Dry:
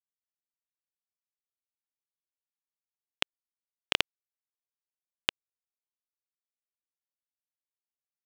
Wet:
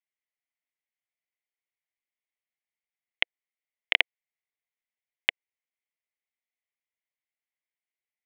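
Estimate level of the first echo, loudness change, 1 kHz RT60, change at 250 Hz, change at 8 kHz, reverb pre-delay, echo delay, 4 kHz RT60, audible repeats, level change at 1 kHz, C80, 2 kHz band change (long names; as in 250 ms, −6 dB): no echo audible, +4.0 dB, no reverb audible, −7.5 dB, below −20 dB, no reverb audible, no echo audible, no reverb audible, no echo audible, −2.0 dB, no reverb audible, +7.5 dB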